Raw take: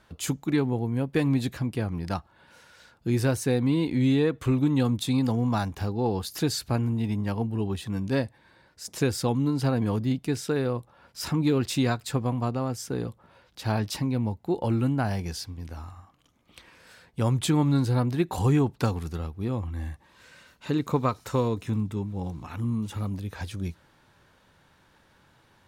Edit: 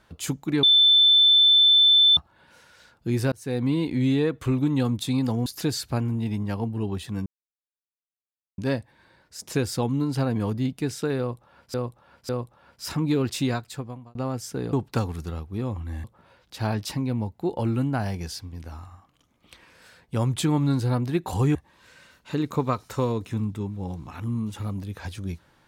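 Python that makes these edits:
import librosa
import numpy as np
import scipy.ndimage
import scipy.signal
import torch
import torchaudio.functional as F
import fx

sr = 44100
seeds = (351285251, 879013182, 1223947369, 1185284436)

y = fx.edit(x, sr, fx.bleep(start_s=0.63, length_s=1.54, hz=3530.0, db=-13.0),
    fx.fade_in_span(start_s=3.32, length_s=0.31),
    fx.cut(start_s=5.46, length_s=0.78),
    fx.insert_silence(at_s=8.04, length_s=1.32),
    fx.repeat(start_s=10.65, length_s=0.55, count=3),
    fx.fade_out_span(start_s=11.76, length_s=0.75),
    fx.move(start_s=18.6, length_s=1.31, to_s=13.09), tone=tone)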